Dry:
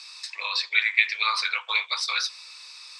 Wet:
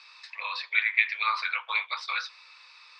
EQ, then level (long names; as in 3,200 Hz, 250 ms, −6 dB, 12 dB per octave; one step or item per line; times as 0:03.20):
high-pass filter 630 Hz 12 dB per octave
low-pass filter 2,400 Hz 12 dB per octave
0.0 dB